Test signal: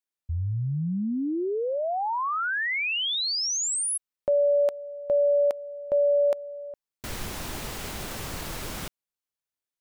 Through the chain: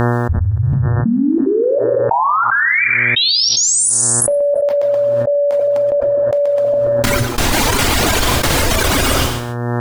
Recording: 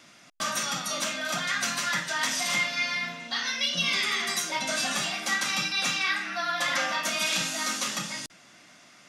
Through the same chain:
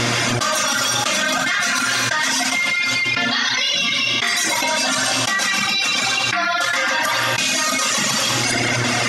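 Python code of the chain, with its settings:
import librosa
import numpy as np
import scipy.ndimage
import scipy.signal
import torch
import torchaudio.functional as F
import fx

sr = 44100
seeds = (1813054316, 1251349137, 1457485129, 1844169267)

p1 = fx.high_shelf(x, sr, hz=12000.0, db=-7.5)
p2 = p1 + fx.echo_feedback(p1, sr, ms=127, feedback_pct=34, wet_db=-3.5, dry=0)
p3 = fx.step_gate(p2, sr, bpm=185, pattern='xxxx.xxxx....', floor_db=-60.0, edge_ms=4.5)
p4 = fx.rev_gated(p3, sr, seeds[0], gate_ms=420, shape='falling', drr_db=2.0)
p5 = fx.dmg_buzz(p4, sr, base_hz=120.0, harmonics=15, level_db=-56.0, tilt_db=-5, odd_only=False)
p6 = fx.rider(p5, sr, range_db=5, speed_s=0.5)
p7 = p5 + (p6 * 10.0 ** (-1.5 / 20.0))
p8 = fx.dereverb_blind(p7, sr, rt60_s=1.2)
p9 = fx.peak_eq(p8, sr, hz=170.0, db=-13.0, octaves=0.27)
p10 = fx.env_flatten(p9, sr, amount_pct=100)
y = p10 * 10.0 ** (-3.0 / 20.0)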